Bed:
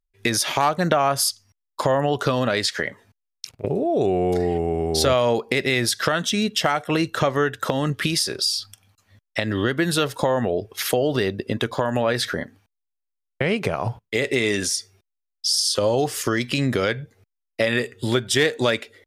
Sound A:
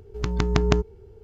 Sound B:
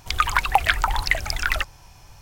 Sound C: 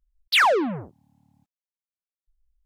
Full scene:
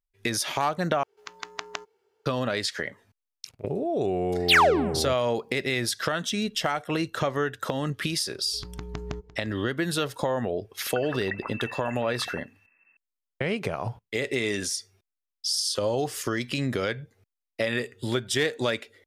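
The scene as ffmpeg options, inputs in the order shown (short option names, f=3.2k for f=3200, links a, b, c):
-filter_complex "[1:a]asplit=2[a][b];[0:a]volume=-6dB[c];[a]highpass=960[d];[b]aecho=1:1:346:0.119[e];[2:a]lowpass=f=2.3k:t=q:w=0.5098,lowpass=f=2.3k:t=q:w=0.6013,lowpass=f=2.3k:t=q:w=0.9,lowpass=f=2.3k:t=q:w=2.563,afreqshift=-2700[f];[c]asplit=2[g][h];[g]atrim=end=1.034[i];[d]atrim=end=1.23,asetpts=PTS-STARTPTS,volume=-5dB[j];[h]atrim=start=2.256[k];[3:a]atrim=end=2.65,asetpts=PTS-STARTPTS,volume=-0.5dB,afade=t=in:d=0.004:c=hsin,afade=t=out:st=2.646:d=0.004:c=hsin,adelay=4160[l];[e]atrim=end=1.23,asetpts=PTS-STARTPTS,volume=-14.5dB,afade=t=in:d=0.004:c=hsin,afade=t=out:st=1.226:d=0.004:c=hsin,adelay=8390[m];[f]atrim=end=2.21,asetpts=PTS-STARTPTS,volume=-17dB,afade=t=in:d=0.004:c=hsin,afade=t=out:st=2.206:d=0.004:c=hsin,adelay=10760[n];[i][j]acrossfade=d=0.004:c1=hsin:c2=hsin[o];[o][k]acrossfade=d=0.004:c1=hsin:c2=hsin[p];[p][l][m][n]amix=inputs=4:normalize=0"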